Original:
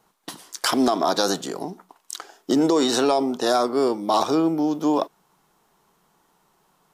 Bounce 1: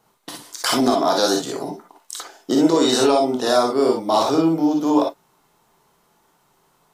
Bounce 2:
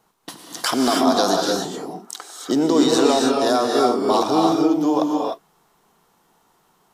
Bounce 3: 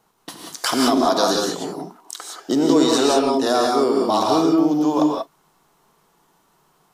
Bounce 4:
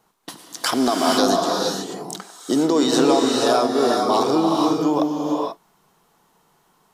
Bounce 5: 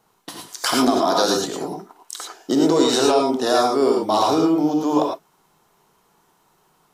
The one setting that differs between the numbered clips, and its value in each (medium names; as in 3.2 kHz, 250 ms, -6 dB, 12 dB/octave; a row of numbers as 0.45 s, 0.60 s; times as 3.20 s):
gated-style reverb, gate: 80 ms, 330 ms, 210 ms, 510 ms, 130 ms